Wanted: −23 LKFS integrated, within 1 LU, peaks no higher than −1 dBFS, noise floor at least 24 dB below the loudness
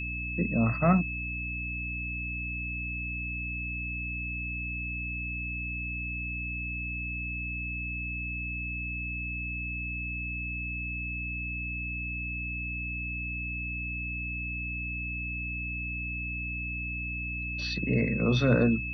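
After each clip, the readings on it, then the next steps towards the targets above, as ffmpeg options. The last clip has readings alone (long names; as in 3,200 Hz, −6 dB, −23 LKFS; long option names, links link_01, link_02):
mains hum 60 Hz; hum harmonics up to 300 Hz; level of the hum −35 dBFS; interfering tone 2,600 Hz; level of the tone −34 dBFS; integrated loudness −31.5 LKFS; sample peak −11.0 dBFS; target loudness −23.0 LKFS
→ -af "bandreject=frequency=60:width_type=h:width=4,bandreject=frequency=120:width_type=h:width=4,bandreject=frequency=180:width_type=h:width=4,bandreject=frequency=240:width_type=h:width=4,bandreject=frequency=300:width_type=h:width=4"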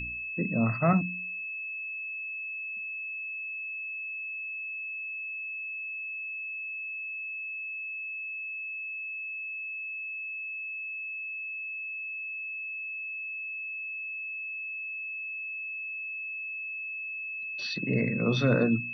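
mains hum none found; interfering tone 2,600 Hz; level of the tone −34 dBFS
→ -af "bandreject=frequency=2600:width=30"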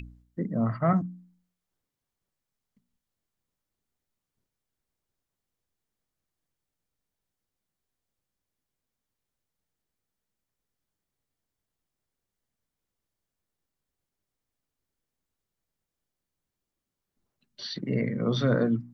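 interfering tone none found; integrated loudness −28.0 LKFS; sample peak −12.0 dBFS; target loudness −23.0 LKFS
→ -af "volume=5dB"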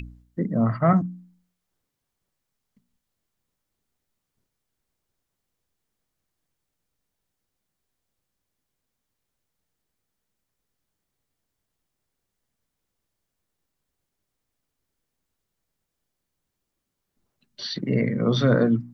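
integrated loudness −23.0 LKFS; sample peak −7.0 dBFS; background noise floor −82 dBFS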